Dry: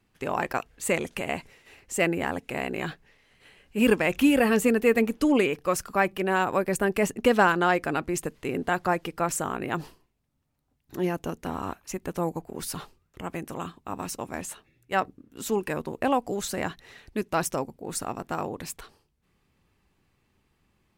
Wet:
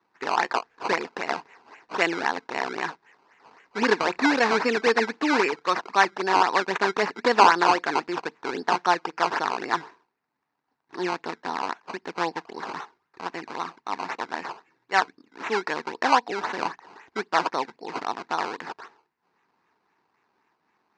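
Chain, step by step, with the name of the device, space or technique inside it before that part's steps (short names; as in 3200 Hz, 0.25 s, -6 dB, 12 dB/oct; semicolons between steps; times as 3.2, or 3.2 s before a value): circuit-bent sampling toy (decimation with a swept rate 17×, swing 100% 3.8 Hz; speaker cabinet 410–5200 Hz, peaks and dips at 570 Hz -9 dB, 940 Hz +7 dB, 1700 Hz +4 dB, 3200 Hz -8 dB); gain +4 dB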